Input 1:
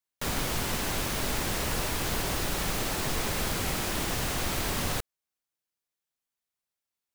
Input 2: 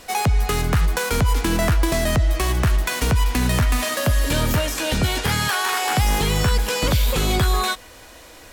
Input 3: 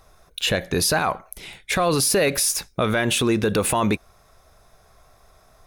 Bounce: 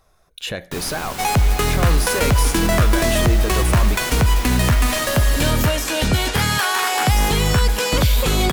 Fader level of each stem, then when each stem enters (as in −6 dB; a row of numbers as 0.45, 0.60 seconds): −0.5, +2.5, −5.5 decibels; 0.50, 1.10, 0.00 seconds